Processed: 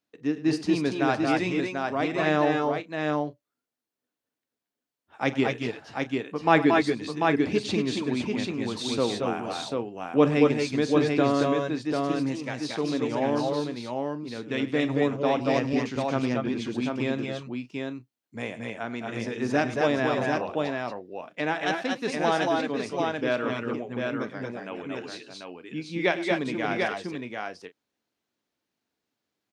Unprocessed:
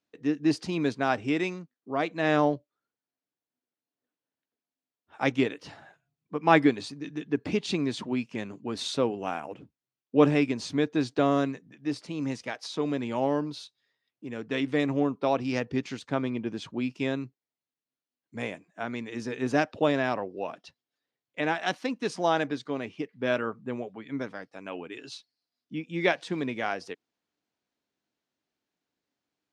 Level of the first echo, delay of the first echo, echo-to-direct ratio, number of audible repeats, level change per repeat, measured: -17.0 dB, 45 ms, 0.0 dB, 5, no regular repeats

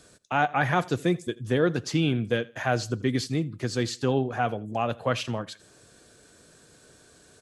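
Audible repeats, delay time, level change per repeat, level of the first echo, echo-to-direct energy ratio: 2, 82 ms, -11.0 dB, -22.5 dB, -22.0 dB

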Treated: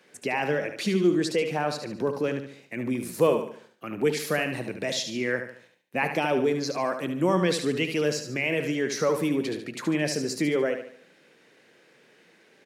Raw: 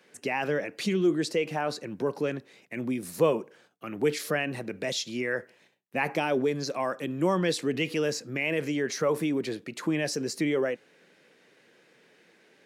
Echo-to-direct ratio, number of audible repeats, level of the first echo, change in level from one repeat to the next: -7.0 dB, 4, -8.0 dB, -7.5 dB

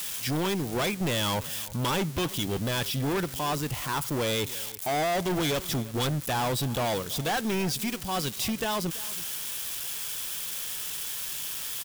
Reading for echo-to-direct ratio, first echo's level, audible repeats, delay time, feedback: -19.0 dB, -19.0 dB, 1, 331 ms, no regular repeats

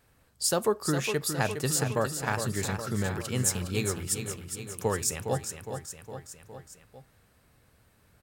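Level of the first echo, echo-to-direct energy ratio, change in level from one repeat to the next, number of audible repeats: -8.0 dB, -6.0 dB, -4.5 dB, 4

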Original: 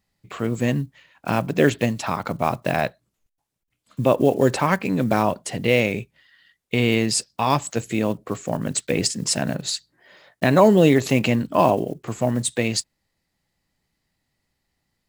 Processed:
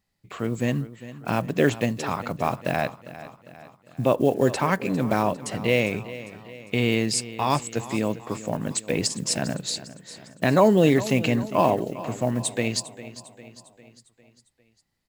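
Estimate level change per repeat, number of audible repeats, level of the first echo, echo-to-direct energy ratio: -5.5 dB, 4, -15.5 dB, -14.0 dB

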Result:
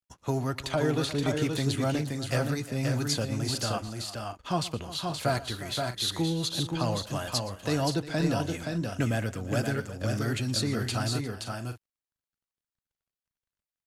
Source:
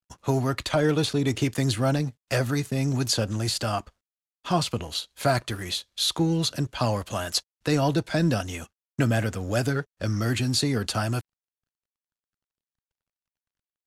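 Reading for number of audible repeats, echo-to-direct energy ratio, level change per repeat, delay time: 4, -3.5 dB, no regular repeats, 118 ms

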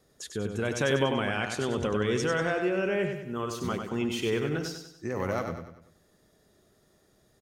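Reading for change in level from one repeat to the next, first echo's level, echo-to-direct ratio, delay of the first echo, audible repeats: -7.0 dB, -6.0 dB, -5.0 dB, 96 ms, 5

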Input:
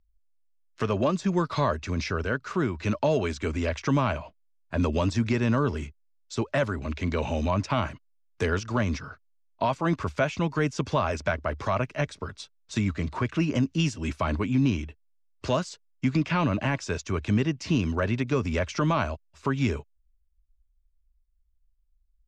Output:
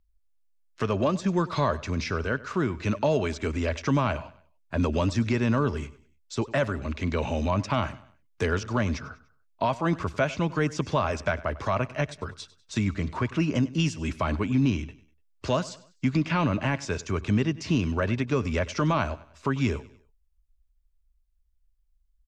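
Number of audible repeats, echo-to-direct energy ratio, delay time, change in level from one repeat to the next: 3, -18.0 dB, 98 ms, -7.5 dB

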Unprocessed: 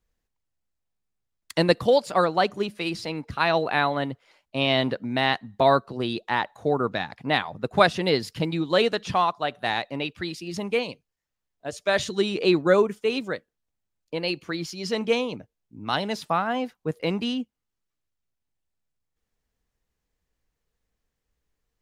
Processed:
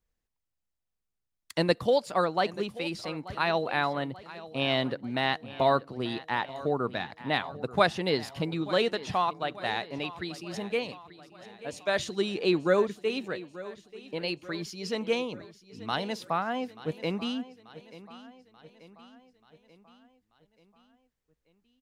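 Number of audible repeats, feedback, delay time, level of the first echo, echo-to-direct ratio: 4, 54%, 885 ms, -17.0 dB, -15.5 dB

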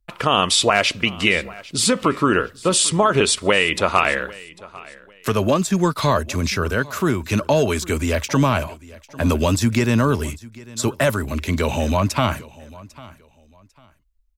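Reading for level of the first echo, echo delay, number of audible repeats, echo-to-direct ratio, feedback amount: -21.0 dB, 798 ms, 2, -20.5 dB, 26%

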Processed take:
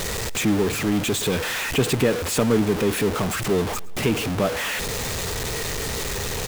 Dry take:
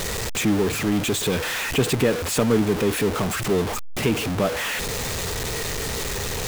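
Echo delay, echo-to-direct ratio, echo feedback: 110 ms, -21.5 dB, 59%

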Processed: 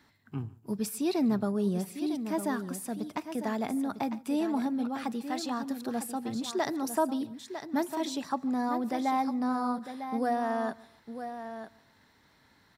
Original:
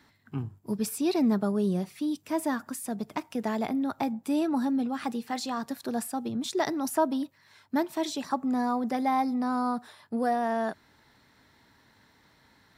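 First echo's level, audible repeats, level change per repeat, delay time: -23.0 dB, 4, no regular repeats, 146 ms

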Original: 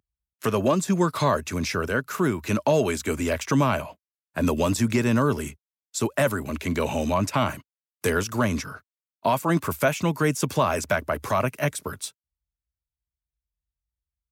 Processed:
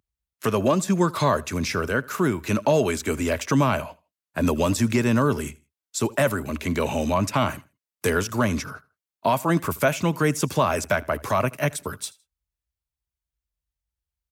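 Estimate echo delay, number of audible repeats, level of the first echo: 80 ms, 2, -23.0 dB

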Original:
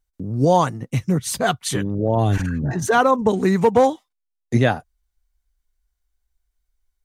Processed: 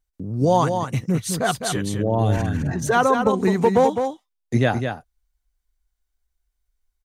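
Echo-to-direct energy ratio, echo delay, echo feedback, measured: -6.5 dB, 208 ms, no regular repeats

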